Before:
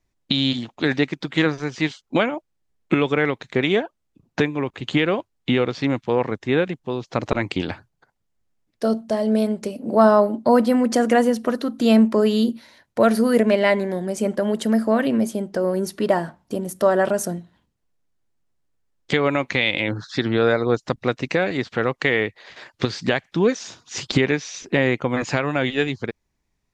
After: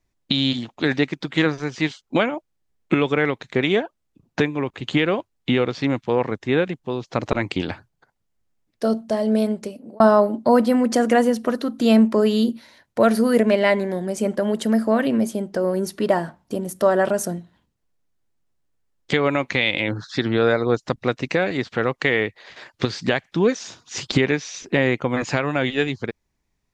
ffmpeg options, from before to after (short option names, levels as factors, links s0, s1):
-filter_complex "[0:a]asplit=2[s0][s1];[s0]atrim=end=10,asetpts=PTS-STARTPTS,afade=t=out:st=9.52:d=0.48[s2];[s1]atrim=start=10,asetpts=PTS-STARTPTS,afade=t=in:d=0.004:c=hsin[s3];[s2][s3]concat=n=2:v=0:a=1"